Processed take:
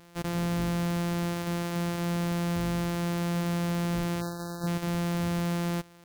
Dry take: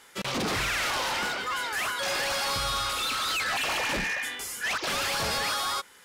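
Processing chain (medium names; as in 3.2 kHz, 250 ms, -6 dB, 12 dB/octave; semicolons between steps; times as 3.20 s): sorted samples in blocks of 256 samples; spectral selection erased 4.21–4.67 s, 1.8–3.7 kHz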